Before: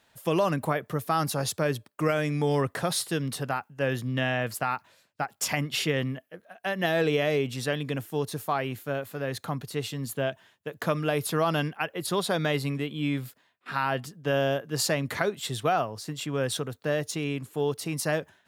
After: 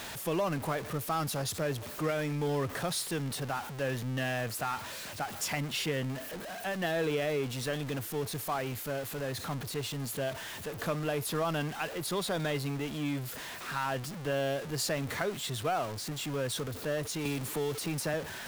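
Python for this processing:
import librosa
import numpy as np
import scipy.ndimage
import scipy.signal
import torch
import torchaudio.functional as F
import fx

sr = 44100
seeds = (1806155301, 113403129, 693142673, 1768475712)

y = x + 0.5 * 10.0 ** (-28.0 / 20.0) * np.sign(x)
y = fx.band_squash(y, sr, depth_pct=70, at=(17.25, 18.14))
y = y * 10.0 ** (-8.0 / 20.0)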